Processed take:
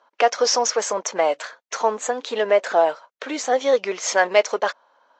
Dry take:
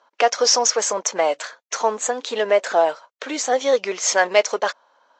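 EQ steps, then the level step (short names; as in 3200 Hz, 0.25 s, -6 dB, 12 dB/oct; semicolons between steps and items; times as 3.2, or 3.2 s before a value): high shelf 5600 Hz -9 dB; 0.0 dB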